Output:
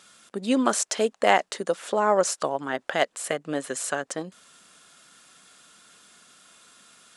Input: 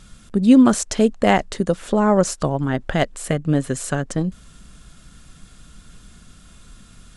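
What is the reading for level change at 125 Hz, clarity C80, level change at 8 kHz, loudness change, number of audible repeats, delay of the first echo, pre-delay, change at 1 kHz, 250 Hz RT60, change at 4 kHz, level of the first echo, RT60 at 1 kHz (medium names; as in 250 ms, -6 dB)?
-20.5 dB, no reverb, -1.0 dB, -6.5 dB, no echo, no echo, no reverb, -1.5 dB, no reverb, -1.0 dB, no echo, no reverb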